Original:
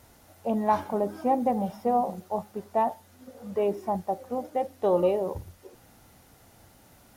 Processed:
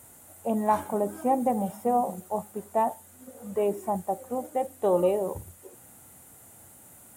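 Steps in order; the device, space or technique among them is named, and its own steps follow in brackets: budget condenser microphone (HPF 77 Hz; resonant high shelf 6500 Hz +8 dB, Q 3)

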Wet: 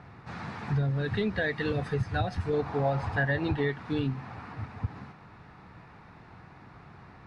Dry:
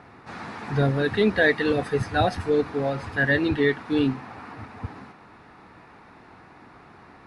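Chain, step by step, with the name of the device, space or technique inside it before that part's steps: jukebox (LPF 7500 Hz 12 dB/oct; resonant low shelf 200 Hz +7 dB, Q 1.5; compressor 5:1, threshold -22 dBFS, peak gain reduction 10 dB); 2.53–3.71 bell 780 Hz +9.5 dB 0.99 oct; gain -3.5 dB

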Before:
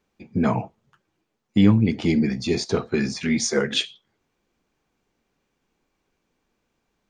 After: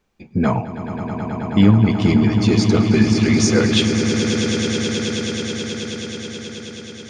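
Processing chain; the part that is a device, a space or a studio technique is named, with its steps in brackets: low shelf boost with a cut just above (low shelf 65 Hz +8 dB; bell 300 Hz -2.5 dB 0.77 oct); swelling echo 0.107 s, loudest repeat 8, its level -11 dB; gain +3.5 dB

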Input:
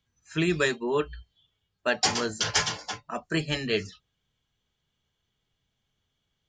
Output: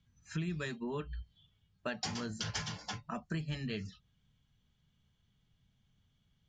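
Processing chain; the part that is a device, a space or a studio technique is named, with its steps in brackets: jukebox (LPF 7600 Hz 12 dB/oct; resonant low shelf 270 Hz +8.5 dB, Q 1.5; compressor 4:1, threshold -36 dBFS, peak gain reduction 17 dB); gain -1.5 dB

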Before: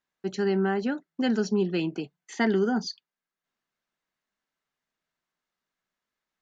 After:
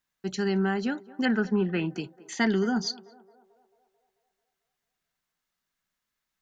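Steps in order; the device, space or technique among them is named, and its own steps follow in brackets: smiley-face EQ (low shelf 130 Hz +6 dB; bell 440 Hz -5.5 dB 2.1 oct; high shelf 6200 Hz +7 dB); 1.25–1.86 EQ curve 300 Hz 0 dB, 1900 Hz +7 dB, 5100 Hz -20 dB; narrowing echo 0.22 s, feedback 62%, band-pass 640 Hz, level -18 dB; gain +1.5 dB

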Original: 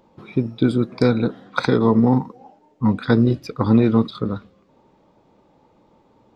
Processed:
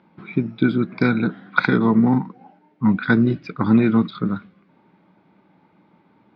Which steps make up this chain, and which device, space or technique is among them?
guitar cabinet (speaker cabinet 110–4300 Hz, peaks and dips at 180 Hz +10 dB, 310 Hz +3 dB, 500 Hz -8 dB, 1500 Hz +9 dB, 2200 Hz +9 dB); gain -2 dB

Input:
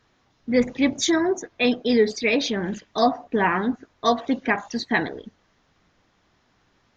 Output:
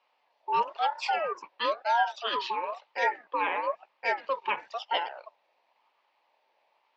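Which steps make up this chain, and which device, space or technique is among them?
voice changer toy (ring modulator with a swept carrier 910 Hz, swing 30%, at 1 Hz; speaker cabinet 550–4500 Hz, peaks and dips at 570 Hz +6 dB, 890 Hz +8 dB, 1400 Hz -8 dB, 2500 Hz +3 dB); gain -5.5 dB

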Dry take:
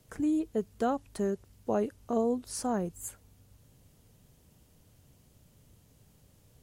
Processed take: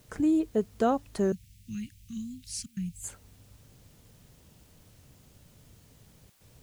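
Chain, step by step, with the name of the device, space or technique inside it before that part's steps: worn cassette (LPF 8600 Hz 12 dB/oct; wow and flutter; level dips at 2.66/6.3, 0.105 s -25 dB; white noise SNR 34 dB); 1.32–3.04 elliptic band-stop 180–2300 Hz, stop band 60 dB; gain +4 dB

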